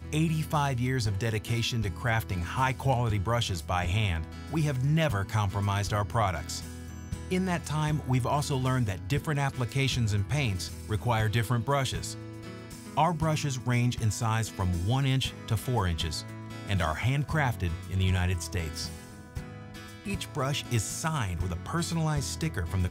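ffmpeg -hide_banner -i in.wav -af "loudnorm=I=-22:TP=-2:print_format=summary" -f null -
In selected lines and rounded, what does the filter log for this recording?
Input Integrated:    -29.6 LUFS
Input True Peak:     -13.2 dBTP
Input LRA:             2.7 LU
Input Threshold:     -39.9 LUFS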